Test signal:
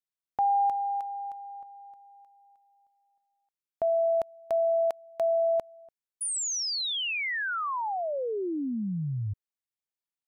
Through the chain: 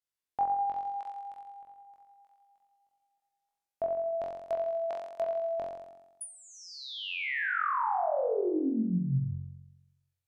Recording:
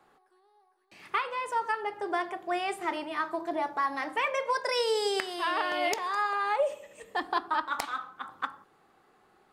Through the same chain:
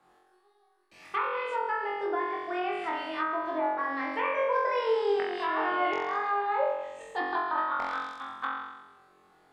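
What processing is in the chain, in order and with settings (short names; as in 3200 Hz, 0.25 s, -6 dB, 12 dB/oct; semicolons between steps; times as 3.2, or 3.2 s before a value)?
flutter echo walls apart 3.8 m, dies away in 1 s; treble ducked by the level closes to 1900 Hz, closed at -21.5 dBFS; gain -4 dB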